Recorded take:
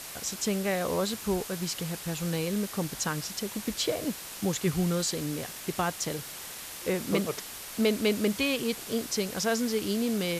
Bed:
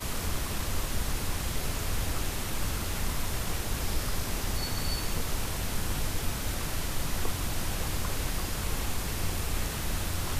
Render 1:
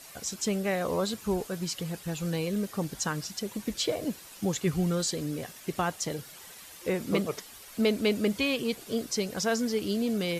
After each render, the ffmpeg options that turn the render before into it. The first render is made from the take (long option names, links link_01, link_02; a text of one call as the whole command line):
ffmpeg -i in.wav -af "afftdn=noise_reduction=10:noise_floor=-42" out.wav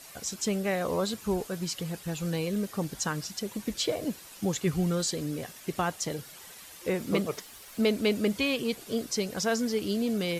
ffmpeg -i in.wav -filter_complex "[0:a]asettb=1/sr,asplit=3[link_01][link_02][link_03];[link_01]atrim=end=6.924[link_04];[link_02]atrim=start=6.92:end=8.2,asetpts=PTS-STARTPTS,afade=type=in:duration=0.004:curve=qsin,afade=type=out:start_time=1.276:duration=0.004:curve=qsin,aeval=exprs='val(0)*gte(abs(val(0)),0.002)':channel_layout=same[link_05];[link_03]atrim=start=8.196[link_06];[link_04][link_05]acrossfade=duration=0.004:curve1=hsin:curve2=qsin[link_07];[link_07][link_06]acrossfade=duration=0.004:curve1=qsin:curve2=hsin" out.wav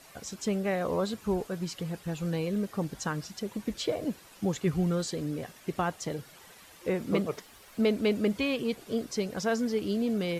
ffmpeg -i in.wav -af "highshelf=frequency=3300:gain=-9" out.wav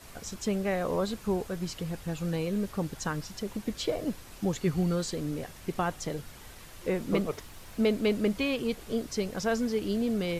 ffmpeg -i in.wav -i bed.wav -filter_complex "[1:a]volume=-18dB[link_01];[0:a][link_01]amix=inputs=2:normalize=0" out.wav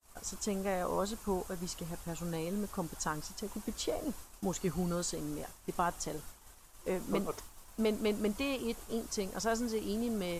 ffmpeg -i in.wav -af "agate=range=-33dB:threshold=-40dB:ratio=3:detection=peak,equalizer=frequency=125:width_type=o:width=1:gain=-11,equalizer=frequency=250:width_type=o:width=1:gain=-3,equalizer=frequency=500:width_type=o:width=1:gain=-5,equalizer=frequency=1000:width_type=o:width=1:gain=3,equalizer=frequency=2000:width_type=o:width=1:gain=-7,equalizer=frequency=4000:width_type=o:width=1:gain=-5,equalizer=frequency=8000:width_type=o:width=1:gain=4" out.wav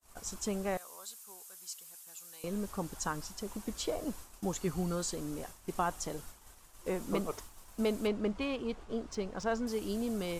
ffmpeg -i in.wav -filter_complex "[0:a]asettb=1/sr,asplit=3[link_01][link_02][link_03];[link_01]atrim=end=0.774[link_04];[link_02]atrim=start=0.77:end=2.44,asetpts=PTS-STARTPTS,afade=type=in:duration=0.004:curve=qsin,afade=type=out:start_time=1.666:duration=0.004:curve=qsin,aderivative[link_05];[link_03]atrim=start=2.436[link_06];[link_04][link_05]acrossfade=duration=0.004:curve1=hsin:curve2=qsin[link_07];[link_07][link_06]acrossfade=duration=0.004:curve1=qsin:curve2=hsin,asettb=1/sr,asplit=3[link_08][link_09][link_10];[link_08]atrim=end=8.074[link_11];[link_09]atrim=start=8.07:end=9.67,asetpts=PTS-STARTPTS,afade=type=in:duration=0.004:curve=qsin,afade=type=out:start_time=1.596:duration=0.004:curve=qsin,adynamicsmooth=sensitivity=4.5:basefreq=3400[link_12];[link_10]atrim=start=9.666[link_13];[link_11][link_12]acrossfade=duration=0.004:curve1=hsin:curve2=qsin[link_14];[link_14][link_13]acrossfade=duration=0.004:curve1=qsin:curve2=hsin" out.wav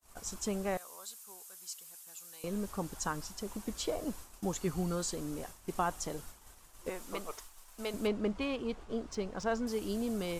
ffmpeg -i in.wav -filter_complex "[0:a]asettb=1/sr,asplit=3[link_01][link_02][link_03];[link_01]atrim=end=6.894[link_04];[link_02]atrim=start=6.89:end=7.94,asetpts=PTS-STARTPTS,afade=type=in:duration=0.004:curve=qsin,afade=type=out:start_time=1.046:duration=0.004:curve=qsin,equalizer=frequency=140:width=0.33:gain=-14[link_05];[link_03]atrim=start=7.936[link_06];[link_04][link_05]acrossfade=duration=0.004:curve1=hsin:curve2=qsin[link_07];[link_07][link_06]acrossfade=duration=0.004:curve1=qsin:curve2=hsin" out.wav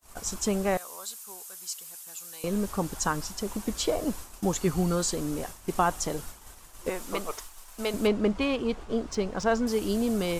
ffmpeg -i in.wav -af "volume=8dB" out.wav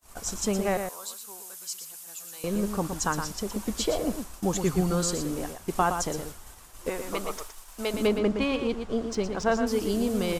ffmpeg -i in.wav -filter_complex "[0:a]asplit=2[link_01][link_02];[link_02]adelay=116.6,volume=-7dB,highshelf=frequency=4000:gain=-2.62[link_03];[link_01][link_03]amix=inputs=2:normalize=0" out.wav